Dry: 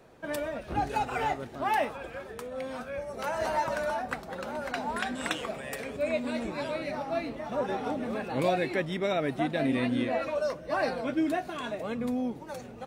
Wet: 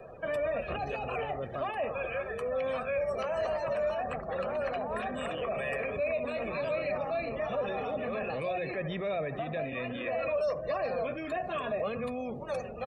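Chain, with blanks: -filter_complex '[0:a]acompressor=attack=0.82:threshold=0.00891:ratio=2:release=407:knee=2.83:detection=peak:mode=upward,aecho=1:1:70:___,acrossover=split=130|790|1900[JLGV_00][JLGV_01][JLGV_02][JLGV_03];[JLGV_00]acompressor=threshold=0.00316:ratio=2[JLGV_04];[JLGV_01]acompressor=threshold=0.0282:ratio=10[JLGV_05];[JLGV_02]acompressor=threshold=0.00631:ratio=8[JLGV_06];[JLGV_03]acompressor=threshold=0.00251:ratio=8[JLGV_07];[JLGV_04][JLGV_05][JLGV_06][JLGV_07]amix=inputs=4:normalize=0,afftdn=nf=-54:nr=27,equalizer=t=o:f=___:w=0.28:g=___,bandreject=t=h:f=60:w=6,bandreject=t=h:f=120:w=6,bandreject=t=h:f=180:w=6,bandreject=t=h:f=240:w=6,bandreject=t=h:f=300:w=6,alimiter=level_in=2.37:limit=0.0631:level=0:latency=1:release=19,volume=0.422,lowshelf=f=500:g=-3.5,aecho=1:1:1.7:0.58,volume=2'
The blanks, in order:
0.15, 2600, 10.5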